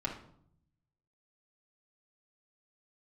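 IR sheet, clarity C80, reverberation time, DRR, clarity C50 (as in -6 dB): 12.0 dB, 0.65 s, -4.5 dB, 8.0 dB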